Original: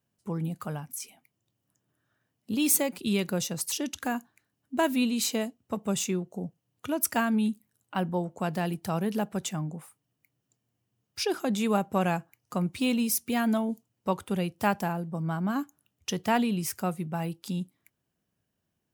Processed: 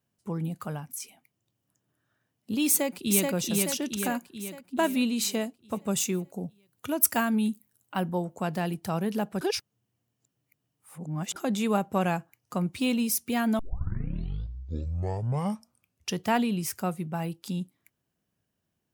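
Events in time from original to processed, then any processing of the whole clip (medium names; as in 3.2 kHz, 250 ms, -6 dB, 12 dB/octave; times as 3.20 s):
2.67–3.31 s: echo throw 430 ms, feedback 55%, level -2 dB
5.91–8.40 s: treble shelf 9.9 kHz +10 dB
9.41–11.36 s: reverse
13.59 s: tape start 2.60 s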